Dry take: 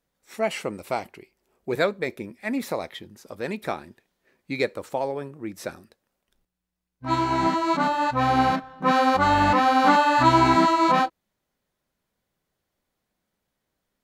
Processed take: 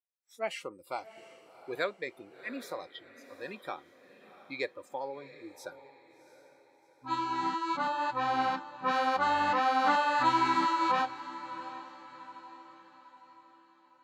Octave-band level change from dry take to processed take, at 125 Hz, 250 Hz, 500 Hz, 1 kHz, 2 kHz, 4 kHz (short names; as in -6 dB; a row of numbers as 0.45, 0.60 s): -19.5, -13.5, -11.0, -8.0, -7.0, -7.5 dB